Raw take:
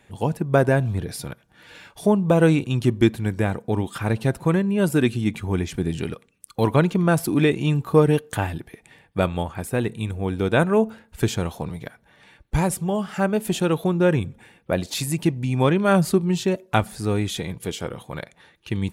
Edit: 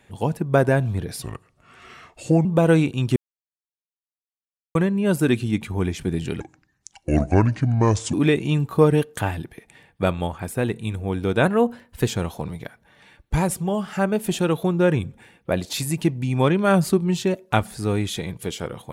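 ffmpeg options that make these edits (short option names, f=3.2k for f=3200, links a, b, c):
-filter_complex "[0:a]asplit=9[a][b][c][d][e][f][g][h][i];[a]atrim=end=1.224[j];[b]atrim=start=1.22:end=2.18,asetpts=PTS-STARTPTS,asetrate=34398,aresample=44100[k];[c]atrim=start=2.176:end=2.89,asetpts=PTS-STARTPTS,afade=t=out:st=0.71:d=0.004:c=hsin[l];[d]atrim=start=2.89:end=4.48,asetpts=PTS-STARTPTS,volume=0[m];[e]atrim=start=4.48:end=6.134,asetpts=PTS-STARTPTS,afade=t=in:d=0.004:c=hsin[n];[f]atrim=start=6.13:end=7.29,asetpts=PTS-STARTPTS,asetrate=29547,aresample=44100,atrim=end_sample=76352,asetpts=PTS-STARTPTS[o];[g]atrim=start=7.286:end=10.614[p];[h]atrim=start=10.61:end=11.29,asetpts=PTS-STARTPTS,asetrate=47628,aresample=44100[q];[i]atrim=start=11.286[r];[j][k]acrossfade=d=0.004:c1=hsin:c2=hsin[s];[l][m][n]concat=n=3:v=0:a=1[t];[s][t]acrossfade=d=0.004:c1=hsin:c2=hsin[u];[u][o]acrossfade=d=0.004:c1=hsin:c2=hsin[v];[v][p]acrossfade=d=0.004:c1=hsin:c2=hsin[w];[w][q]acrossfade=d=0.004:c1=hsin:c2=hsin[x];[x][r]acrossfade=d=0.004:c1=hsin:c2=hsin"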